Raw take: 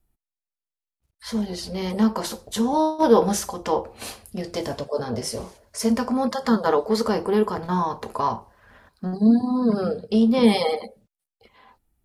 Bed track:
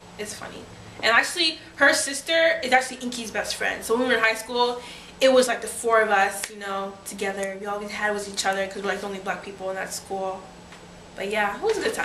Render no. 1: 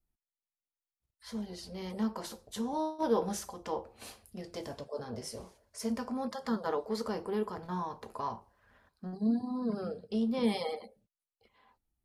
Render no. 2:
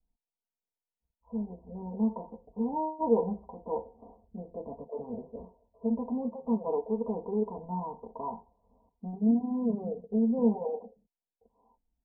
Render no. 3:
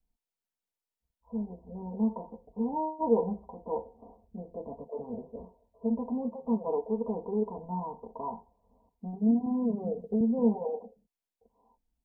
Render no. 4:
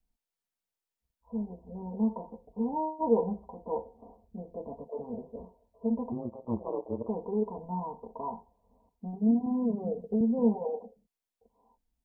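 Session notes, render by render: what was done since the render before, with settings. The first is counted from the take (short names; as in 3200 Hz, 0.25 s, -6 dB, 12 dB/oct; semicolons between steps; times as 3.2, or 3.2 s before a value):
gain -13 dB
steep low-pass 1000 Hz 96 dB/oct; comb 4.3 ms, depth 73%
9.46–10.21 three-band squash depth 70%
6.12–7.09 AM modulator 120 Hz, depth 85%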